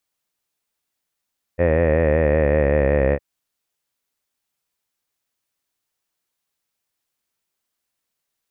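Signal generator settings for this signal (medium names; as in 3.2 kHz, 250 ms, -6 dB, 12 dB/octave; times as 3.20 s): formant-synthesis vowel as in head, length 1.61 s, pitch 83.5 Hz, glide -3.5 st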